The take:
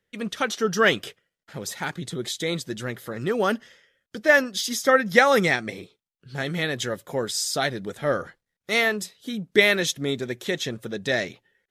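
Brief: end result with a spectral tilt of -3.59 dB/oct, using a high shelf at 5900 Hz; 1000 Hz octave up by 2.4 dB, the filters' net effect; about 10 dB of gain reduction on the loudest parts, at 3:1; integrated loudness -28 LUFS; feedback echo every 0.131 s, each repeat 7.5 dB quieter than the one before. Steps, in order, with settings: bell 1000 Hz +3.5 dB; high shelf 5900 Hz -3 dB; compressor 3:1, threshold -25 dBFS; feedback echo 0.131 s, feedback 42%, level -7.5 dB; gain +0.5 dB

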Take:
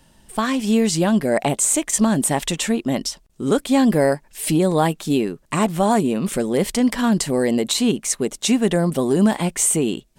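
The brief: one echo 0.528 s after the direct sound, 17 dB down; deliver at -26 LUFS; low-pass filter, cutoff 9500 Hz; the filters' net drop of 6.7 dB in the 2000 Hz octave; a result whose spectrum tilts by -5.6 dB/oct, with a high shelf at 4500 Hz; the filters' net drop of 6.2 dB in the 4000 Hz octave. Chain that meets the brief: LPF 9500 Hz; bell 2000 Hz -7 dB; bell 4000 Hz -3.5 dB; high shelf 4500 Hz -4 dB; echo 0.528 s -17 dB; gain -5.5 dB

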